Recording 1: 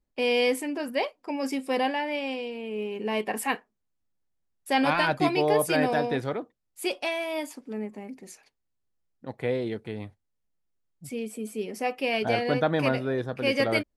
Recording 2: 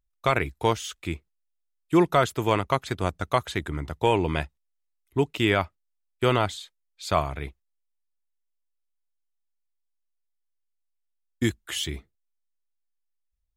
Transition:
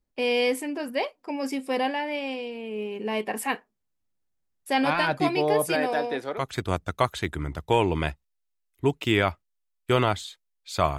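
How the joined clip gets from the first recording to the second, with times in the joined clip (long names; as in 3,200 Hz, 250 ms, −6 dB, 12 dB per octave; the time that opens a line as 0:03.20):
recording 1
0:05.75–0:06.50: high-pass filter 310 Hz 12 dB per octave
0:06.41: continue with recording 2 from 0:02.74, crossfade 0.18 s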